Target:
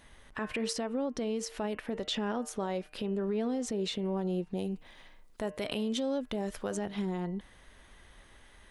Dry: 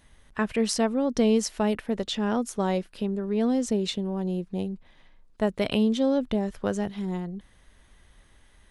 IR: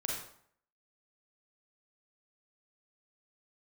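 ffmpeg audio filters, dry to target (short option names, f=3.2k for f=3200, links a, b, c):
-filter_complex "[0:a]acompressor=threshold=-29dB:ratio=6,bass=f=250:g=-6,treble=f=4k:g=-4,bandreject=f=151.8:t=h:w=4,bandreject=f=303.6:t=h:w=4,bandreject=f=455.4:t=h:w=4,bandreject=f=607.2:t=h:w=4,bandreject=f=759:t=h:w=4,bandreject=f=910.8:t=h:w=4,bandreject=f=1.0626k:t=h:w=4,bandreject=f=1.2144k:t=h:w=4,bandreject=f=1.3662k:t=h:w=4,bandreject=f=1.518k:t=h:w=4,bandreject=f=1.6698k:t=h:w=4,bandreject=f=1.8216k:t=h:w=4,bandreject=f=1.9734k:t=h:w=4,bandreject=f=2.1252k:t=h:w=4,bandreject=f=2.277k:t=h:w=4,bandreject=f=2.4288k:t=h:w=4,bandreject=f=2.5806k:t=h:w=4,bandreject=f=2.7324k:t=h:w=4,bandreject=f=2.8842k:t=h:w=4,bandreject=f=3.036k:t=h:w=4,alimiter=level_in=5dB:limit=-24dB:level=0:latency=1:release=60,volume=-5dB,asettb=1/sr,asplit=3[a][b][c];[a]atrim=end=4.574[d];[b]atrim=start=4.57:end=6.77,asetpts=PTS-STARTPTS,afade=t=in:d=0.004:c=qsin,afade=t=out:st=2.196:d=0.004:c=qsin,highshelf=f=5.9k:g=11.5[e];[c]atrim=start=6.766[f];[d][e]acrossfade=d=0.004:c1=hsin:c2=qsin[g];[g][f]acrossfade=d=0.004:c1=qsin:c2=hsin,volume=4.5dB"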